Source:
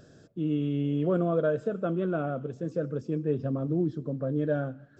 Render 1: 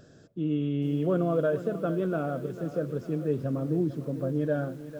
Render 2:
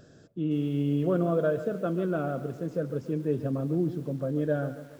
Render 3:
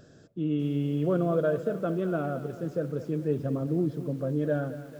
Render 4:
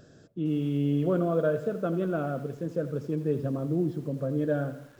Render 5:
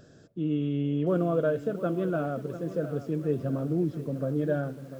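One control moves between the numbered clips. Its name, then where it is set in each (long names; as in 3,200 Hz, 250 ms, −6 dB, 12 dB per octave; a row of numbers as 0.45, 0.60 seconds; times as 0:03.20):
feedback echo at a low word length, delay time: 450, 140, 222, 84, 696 milliseconds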